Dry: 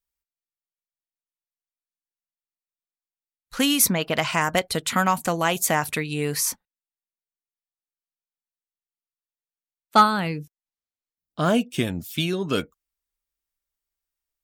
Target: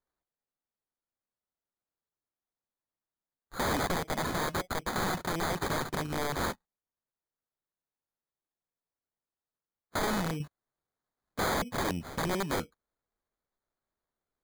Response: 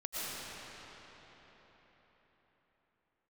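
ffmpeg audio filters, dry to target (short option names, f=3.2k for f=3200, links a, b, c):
-filter_complex "[0:a]acrusher=samples=16:mix=1:aa=0.000001,asettb=1/sr,asplit=3[a][b][c];[a]atrim=end=10.404[d];[b]atrim=start=10.4:end=11.91,asetpts=PTS-STARTPTS,afade=t=in:d=0.004:c=qsin,afade=t=out:st=1.506:d=0.004:c=qsin,acontrast=89[e];[c]atrim=start=11.906[f];[d][e]acrossfade=d=0.004:c1=hsin:c2=qsin[g];[g][f]acrossfade=d=0.004:c1=qsin:c2=hsin,aeval=exprs='(mod(9.44*val(0)+1,2)-1)/9.44':c=same,volume=-5dB"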